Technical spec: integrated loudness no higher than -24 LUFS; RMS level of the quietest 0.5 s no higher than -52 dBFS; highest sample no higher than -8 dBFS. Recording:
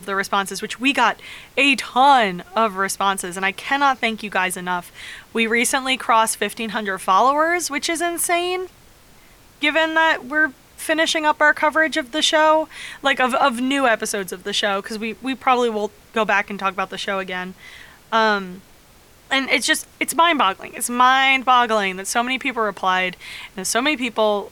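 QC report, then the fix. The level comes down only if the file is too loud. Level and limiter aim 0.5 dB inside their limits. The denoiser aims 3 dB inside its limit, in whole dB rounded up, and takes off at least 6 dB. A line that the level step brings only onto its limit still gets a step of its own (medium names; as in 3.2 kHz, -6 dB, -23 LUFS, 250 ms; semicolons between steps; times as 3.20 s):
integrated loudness -19.0 LUFS: fail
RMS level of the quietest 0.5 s -50 dBFS: fail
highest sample -5.0 dBFS: fail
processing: trim -5.5 dB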